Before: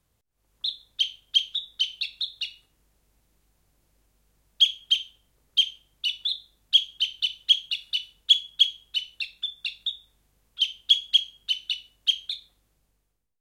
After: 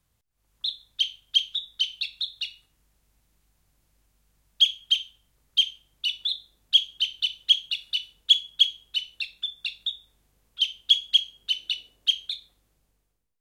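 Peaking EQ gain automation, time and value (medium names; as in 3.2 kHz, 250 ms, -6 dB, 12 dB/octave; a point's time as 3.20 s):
peaking EQ 430 Hz 1.6 oct
5.61 s -5 dB
6.14 s +1 dB
11.25 s +1 dB
11.77 s +11.5 dB
12.35 s +1 dB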